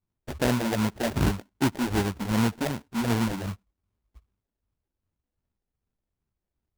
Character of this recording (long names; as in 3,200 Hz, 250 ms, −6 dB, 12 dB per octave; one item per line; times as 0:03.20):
phaser sweep stages 6, 2.6 Hz, lowest notch 110–2,300 Hz
aliases and images of a low sample rate 1,200 Hz, jitter 20%